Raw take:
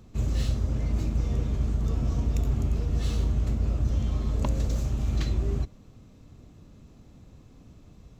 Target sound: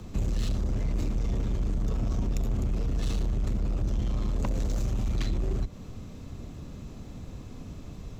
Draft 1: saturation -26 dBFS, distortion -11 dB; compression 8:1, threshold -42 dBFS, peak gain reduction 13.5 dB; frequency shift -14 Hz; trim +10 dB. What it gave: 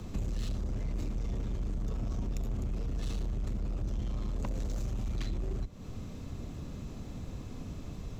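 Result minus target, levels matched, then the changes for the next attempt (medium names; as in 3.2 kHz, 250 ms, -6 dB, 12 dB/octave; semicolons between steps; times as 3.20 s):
compression: peak gain reduction +6 dB
change: compression 8:1, threshold -35 dBFS, peak gain reduction 7.5 dB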